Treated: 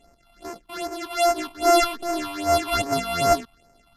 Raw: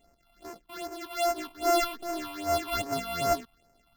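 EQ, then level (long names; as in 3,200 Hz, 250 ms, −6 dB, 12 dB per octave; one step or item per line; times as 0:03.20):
linear-phase brick-wall low-pass 13,000 Hz
+7.5 dB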